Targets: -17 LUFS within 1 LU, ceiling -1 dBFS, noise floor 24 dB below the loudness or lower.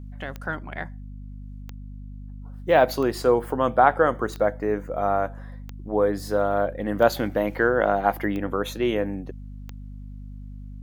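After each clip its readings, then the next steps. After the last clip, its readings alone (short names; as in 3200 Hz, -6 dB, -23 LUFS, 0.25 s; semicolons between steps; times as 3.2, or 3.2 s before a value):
clicks 8; hum 50 Hz; harmonics up to 250 Hz; hum level -35 dBFS; loudness -23.5 LUFS; peak -3.0 dBFS; loudness target -17.0 LUFS
-> de-click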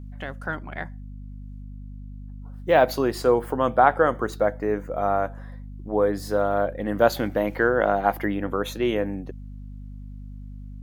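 clicks 0; hum 50 Hz; harmonics up to 250 Hz; hum level -35 dBFS
-> notches 50/100/150/200/250 Hz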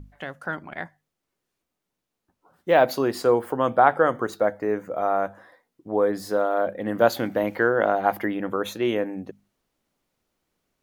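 hum none; loudness -23.5 LUFS; peak -3.0 dBFS; loudness target -17.0 LUFS
-> gain +6.5 dB; limiter -1 dBFS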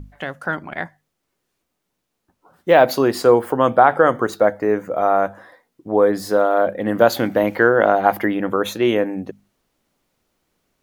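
loudness -17.5 LUFS; peak -1.0 dBFS; noise floor -76 dBFS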